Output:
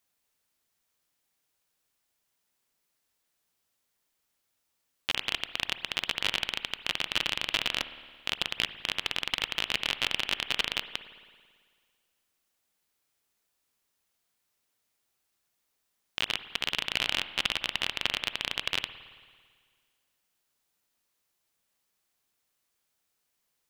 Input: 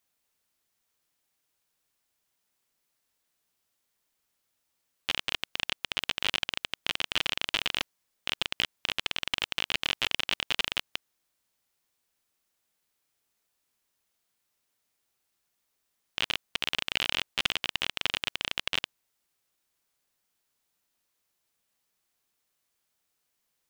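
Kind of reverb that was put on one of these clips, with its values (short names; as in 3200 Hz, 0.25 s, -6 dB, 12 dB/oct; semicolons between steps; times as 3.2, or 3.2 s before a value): spring tank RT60 1.8 s, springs 55 ms, chirp 45 ms, DRR 12 dB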